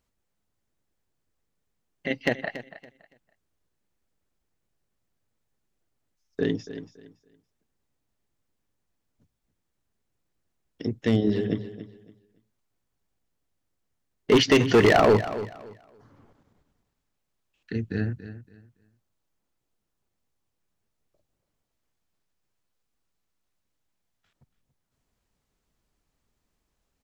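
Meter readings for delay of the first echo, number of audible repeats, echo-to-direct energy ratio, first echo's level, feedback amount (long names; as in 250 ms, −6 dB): 282 ms, 2, −13.5 dB, −13.5 dB, 24%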